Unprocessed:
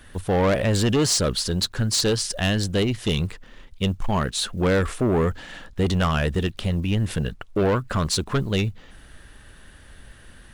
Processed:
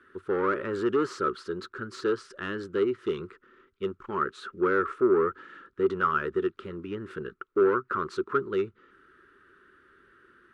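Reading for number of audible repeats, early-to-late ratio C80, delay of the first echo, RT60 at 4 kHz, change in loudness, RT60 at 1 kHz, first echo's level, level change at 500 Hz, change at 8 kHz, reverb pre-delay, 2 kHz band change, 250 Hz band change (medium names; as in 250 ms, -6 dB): no echo, no reverb, no echo, no reverb, -6.0 dB, no reverb, no echo, -2.0 dB, under -25 dB, no reverb, -4.0 dB, -7.0 dB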